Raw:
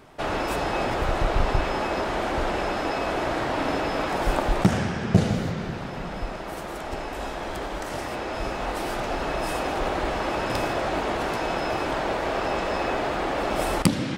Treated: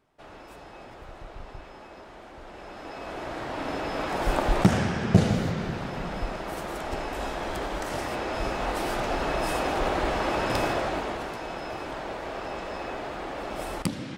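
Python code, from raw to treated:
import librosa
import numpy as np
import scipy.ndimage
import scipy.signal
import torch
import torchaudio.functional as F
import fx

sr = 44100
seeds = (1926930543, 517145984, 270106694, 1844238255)

y = fx.gain(x, sr, db=fx.line((2.4, -19.5), (3.11, -10.0), (4.56, 0.0), (10.7, 0.0), (11.35, -8.5)))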